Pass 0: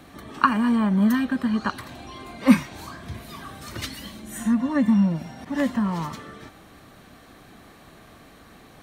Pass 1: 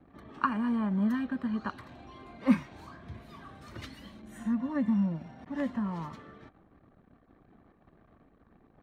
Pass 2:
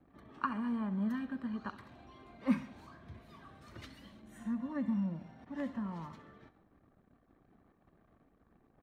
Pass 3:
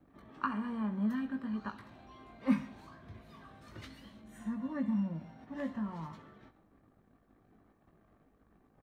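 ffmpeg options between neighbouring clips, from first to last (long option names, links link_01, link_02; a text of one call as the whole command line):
ffmpeg -i in.wav -af "anlmdn=0.0251,lowpass=frequency=2000:poles=1,volume=-8.5dB" out.wav
ffmpeg -i in.wav -af "aecho=1:1:67|134|201|268|335:0.158|0.084|0.0445|0.0236|0.0125,volume=-6.5dB" out.wav
ffmpeg -i in.wav -filter_complex "[0:a]asplit=2[link_01][link_02];[link_02]adelay=19,volume=-6dB[link_03];[link_01][link_03]amix=inputs=2:normalize=0" out.wav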